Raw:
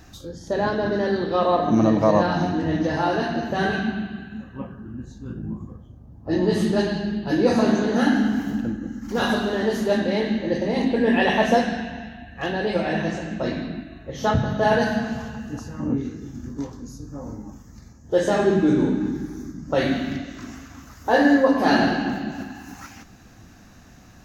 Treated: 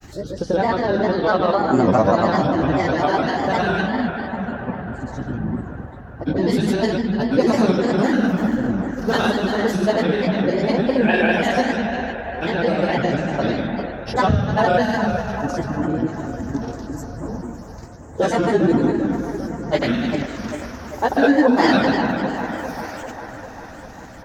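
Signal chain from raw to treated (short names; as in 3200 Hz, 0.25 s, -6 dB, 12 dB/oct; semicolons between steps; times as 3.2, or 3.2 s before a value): in parallel at +3 dB: compressor, threshold -26 dBFS, peak gain reduction 13 dB; on the sum: grains, pitch spread up and down by 3 st; band-limited delay 0.397 s, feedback 67%, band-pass 910 Hz, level -7.5 dB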